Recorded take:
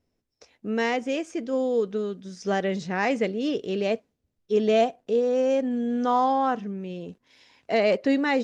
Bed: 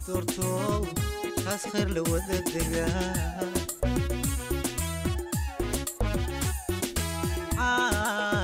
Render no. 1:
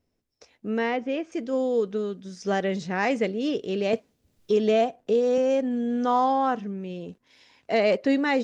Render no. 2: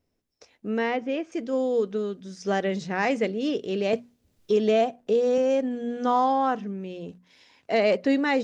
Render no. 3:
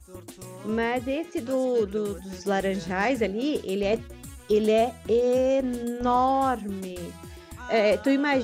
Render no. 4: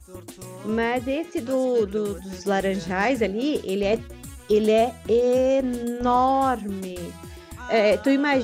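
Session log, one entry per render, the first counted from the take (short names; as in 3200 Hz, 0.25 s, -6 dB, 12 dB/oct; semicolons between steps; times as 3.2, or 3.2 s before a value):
0.78–1.32 air absorption 220 m; 3.93–5.38 three-band squash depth 70%
notches 60/120/180/240 Hz
add bed -13.5 dB
gain +2.5 dB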